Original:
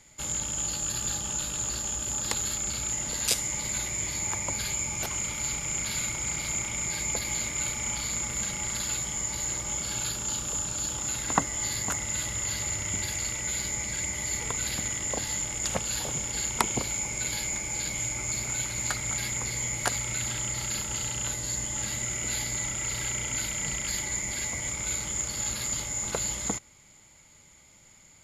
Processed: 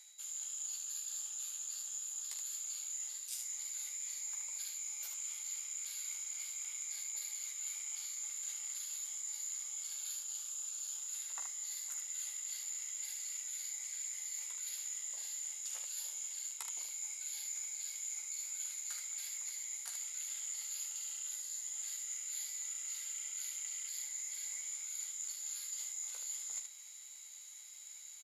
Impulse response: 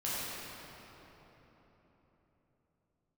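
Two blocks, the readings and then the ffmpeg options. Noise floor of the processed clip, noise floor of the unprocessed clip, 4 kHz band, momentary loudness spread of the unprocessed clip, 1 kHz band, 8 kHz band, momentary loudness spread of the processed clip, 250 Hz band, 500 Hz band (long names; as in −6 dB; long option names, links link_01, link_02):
−52 dBFS, −56 dBFS, −14.0 dB, 2 LU, −27.0 dB, −10.0 dB, 1 LU, below −40 dB, below −30 dB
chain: -af "highpass=450,aderivative,areverse,acompressor=threshold=-46dB:ratio=8,areverse,flanger=delay=2.1:depth=4.3:regen=-70:speed=1.5:shape=sinusoidal,aecho=1:1:14|44|75:0.596|0.299|0.562,aeval=exprs='val(0)+0.000224*sin(2*PI*3900*n/s)':channel_layout=same,volume=7.5dB"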